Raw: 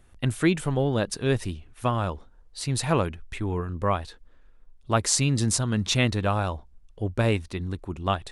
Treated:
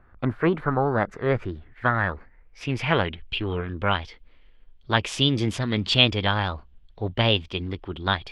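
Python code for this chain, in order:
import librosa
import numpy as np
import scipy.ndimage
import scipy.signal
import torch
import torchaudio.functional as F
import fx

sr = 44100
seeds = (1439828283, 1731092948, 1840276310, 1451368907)

y = fx.filter_sweep_lowpass(x, sr, from_hz=1100.0, to_hz=2500.0, start_s=0.63, end_s=3.54, q=4.6)
y = fx.formant_shift(y, sr, semitones=4)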